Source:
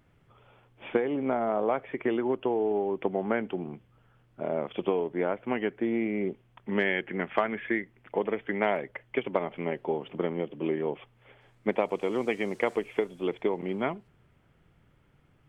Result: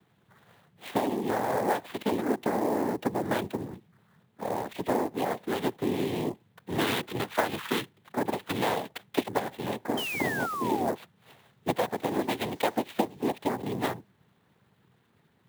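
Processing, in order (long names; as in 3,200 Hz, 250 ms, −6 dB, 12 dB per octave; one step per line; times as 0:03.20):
cochlear-implant simulation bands 6
sound drawn into the spectrogram fall, 0:09.97–0:10.91, 640–3,200 Hz −33 dBFS
converter with an unsteady clock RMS 0.024 ms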